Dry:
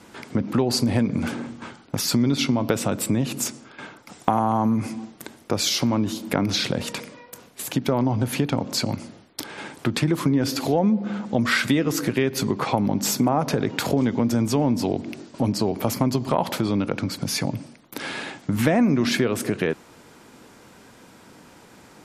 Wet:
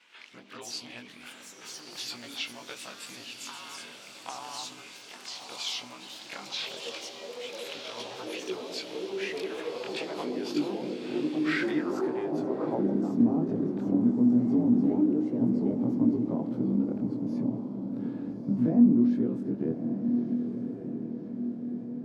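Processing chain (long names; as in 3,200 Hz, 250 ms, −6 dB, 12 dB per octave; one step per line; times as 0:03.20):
every overlapping window played backwards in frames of 50 ms
dynamic equaliser 2,200 Hz, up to −6 dB, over −47 dBFS, Q 1.3
on a send: feedback delay with all-pass diffusion 1,230 ms, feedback 57%, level −7 dB
on the sum: band-pass filter sweep 2,700 Hz → 240 Hz, 0:11.38–0:13.15
delay with pitch and tempo change per echo 89 ms, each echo +4 semitones, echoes 3, each echo −6 dB
level +2 dB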